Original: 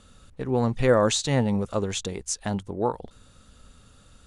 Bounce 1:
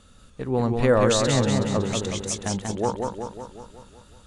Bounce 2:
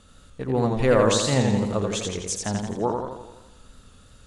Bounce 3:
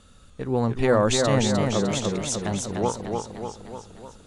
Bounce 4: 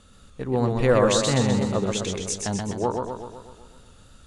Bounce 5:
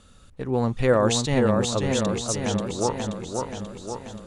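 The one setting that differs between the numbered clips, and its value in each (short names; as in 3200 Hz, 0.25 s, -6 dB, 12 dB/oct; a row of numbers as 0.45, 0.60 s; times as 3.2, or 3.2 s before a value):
warbling echo, time: 186, 84, 300, 126, 532 ms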